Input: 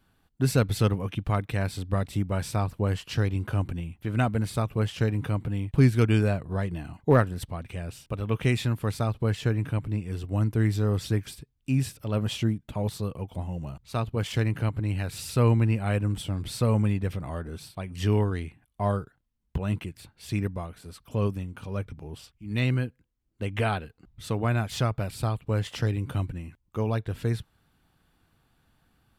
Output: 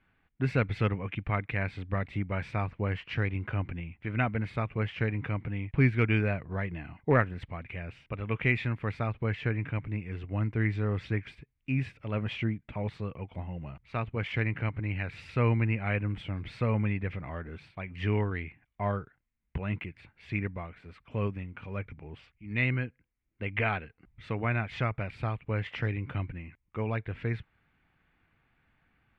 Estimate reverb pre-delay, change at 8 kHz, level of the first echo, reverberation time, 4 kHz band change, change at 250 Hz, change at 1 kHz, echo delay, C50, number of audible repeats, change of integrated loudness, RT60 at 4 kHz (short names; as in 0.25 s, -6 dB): none, under -25 dB, none, none, -7.5 dB, -5.0 dB, -3.0 dB, none, none, none, -4.0 dB, none